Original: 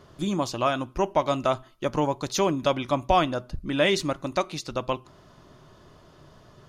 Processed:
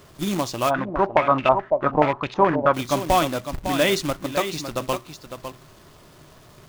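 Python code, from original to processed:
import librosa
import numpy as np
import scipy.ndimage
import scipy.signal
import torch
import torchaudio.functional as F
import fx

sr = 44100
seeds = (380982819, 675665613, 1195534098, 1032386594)

y = x + 10.0 ** (-9.0 / 20.0) * np.pad(x, (int(555 * sr / 1000.0), 0))[:len(x)]
y = fx.quant_companded(y, sr, bits=4)
y = fx.filter_held_lowpass(y, sr, hz=9.4, low_hz=620.0, high_hz=2600.0, at=(0.69, 2.73), fade=0.02)
y = y * librosa.db_to_amplitude(1.5)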